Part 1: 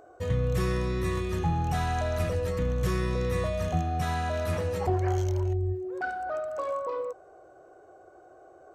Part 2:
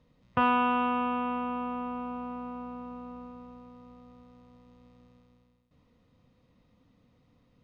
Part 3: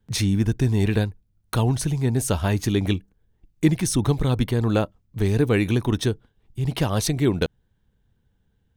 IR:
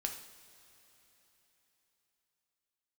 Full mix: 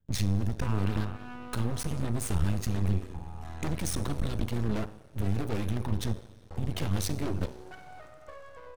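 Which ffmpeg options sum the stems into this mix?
-filter_complex "[0:a]acompressor=threshold=-34dB:ratio=6,adelay=1700,volume=-6dB,asplit=3[a][b][c];[a]atrim=end=4.67,asetpts=PTS-STARTPTS,afade=t=out:st=4.666:d=0.004:c=hsin[d];[b]atrim=start=4.67:end=6.5,asetpts=PTS-STARTPTS,volume=0[e];[c]atrim=start=6.5,asetpts=PTS-STARTPTS,afade=t=in:d=0.004:c=hsin[f];[d][e][f]concat=n=3:v=0:a=1[g];[1:a]adelay=250,volume=-12.5dB,asplit=2[h][i];[i]volume=-4.5dB[j];[2:a]agate=range=-16dB:threshold=-48dB:ratio=16:detection=peak,asoftclip=type=hard:threshold=-22.5dB,volume=1dB,asplit=2[k][l];[l]volume=-13dB[m];[h][k]amix=inputs=2:normalize=0,aphaser=in_gain=1:out_gain=1:delay=4.8:decay=0.43:speed=0.32:type=triangular,acompressor=threshold=-38dB:ratio=2,volume=0dB[n];[3:a]atrim=start_sample=2205[o];[j][m]amix=inputs=2:normalize=0[p];[p][o]afir=irnorm=-1:irlink=0[q];[g][n][q]amix=inputs=3:normalize=0,equalizer=f=64:t=o:w=1.2:g=13.5,bandreject=f=62.33:t=h:w=4,bandreject=f=124.66:t=h:w=4,bandreject=f=186.99:t=h:w=4,bandreject=f=249.32:t=h:w=4,bandreject=f=311.65:t=h:w=4,bandreject=f=373.98:t=h:w=4,bandreject=f=436.31:t=h:w=4,bandreject=f=498.64:t=h:w=4,bandreject=f=560.97:t=h:w=4,bandreject=f=623.3:t=h:w=4,bandreject=f=685.63:t=h:w=4,bandreject=f=747.96:t=h:w=4,bandreject=f=810.29:t=h:w=4,bandreject=f=872.62:t=h:w=4,bandreject=f=934.95:t=h:w=4,bandreject=f=997.28:t=h:w=4,bandreject=f=1.05961k:t=h:w=4,bandreject=f=1.12194k:t=h:w=4,aeval=exprs='max(val(0),0)':c=same"

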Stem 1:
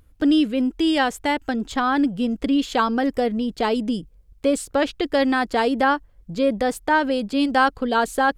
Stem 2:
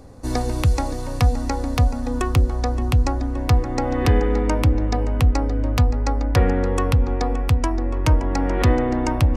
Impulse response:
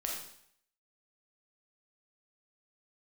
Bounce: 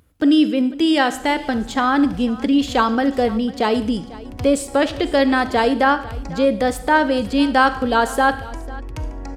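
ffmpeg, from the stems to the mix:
-filter_complex "[0:a]highpass=89,volume=1dB,asplit=4[a][b][c][d];[b]volume=-10dB[e];[c]volume=-17.5dB[f];[1:a]bandreject=f=1.2k:w=12,adelay=900,volume=-14.5dB,asplit=3[g][h][i];[h]volume=-7.5dB[j];[i]volume=-9dB[k];[d]apad=whole_len=452788[l];[g][l]sidechaincompress=threshold=-46dB:ratio=8:attack=16:release=124[m];[2:a]atrim=start_sample=2205[n];[e][j]amix=inputs=2:normalize=0[o];[o][n]afir=irnorm=-1:irlink=0[p];[f][k]amix=inputs=2:normalize=0,aecho=0:1:497:1[q];[a][m][p][q]amix=inputs=4:normalize=0"

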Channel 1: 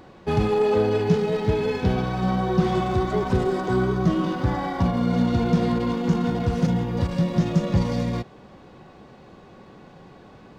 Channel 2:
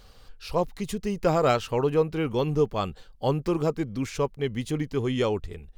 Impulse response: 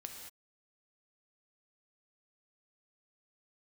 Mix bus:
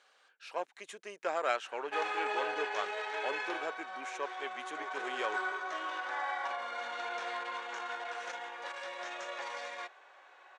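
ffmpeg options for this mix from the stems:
-filter_complex "[0:a]highpass=660,adelay=1650,volume=3dB,afade=t=out:st=3.41:d=0.38:silence=0.375837,afade=t=in:st=4.64:d=0.64:silence=0.421697[a];[1:a]aeval=exprs='0.335*(cos(1*acos(clip(val(0)/0.335,-1,1)))-cos(1*PI/2))+0.0133*(cos(8*acos(clip(val(0)/0.335,-1,1)))-cos(8*PI/2))':c=same,volume=-8.5dB[b];[a][b]amix=inputs=2:normalize=0,highpass=f=430:w=0.5412,highpass=f=430:w=1.3066,equalizer=f=470:t=q:w=4:g=-7,equalizer=f=1.6k:t=q:w=4:g=8,equalizer=f=2.3k:t=q:w=4:g=4,equalizer=f=4.8k:t=q:w=4:g=-8,lowpass=f=8.6k:w=0.5412,lowpass=f=8.6k:w=1.3066"

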